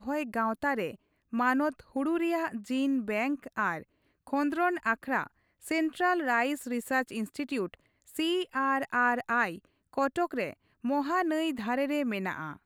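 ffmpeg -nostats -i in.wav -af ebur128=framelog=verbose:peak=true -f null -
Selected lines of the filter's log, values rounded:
Integrated loudness:
  I:         -30.4 LUFS
  Threshold: -40.7 LUFS
Loudness range:
  LRA:         1.3 LU
  Threshold: -50.6 LUFS
  LRA low:   -31.2 LUFS
  LRA high:  -29.9 LUFS
True peak:
  Peak:      -13.9 dBFS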